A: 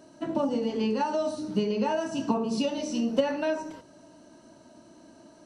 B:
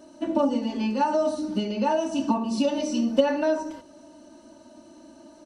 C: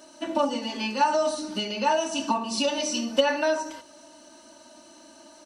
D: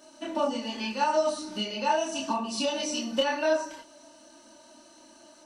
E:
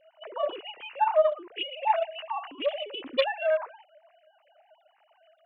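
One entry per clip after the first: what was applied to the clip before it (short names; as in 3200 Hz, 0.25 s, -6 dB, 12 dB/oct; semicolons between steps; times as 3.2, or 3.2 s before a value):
comb 3.4 ms, depth 82%
tilt shelf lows -8.5 dB, about 670 Hz
chorus voices 6, 0.7 Hz, delay 27 ms, depth 4.7 ms
sine-wave speech; Doppler distortion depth 0.14 ms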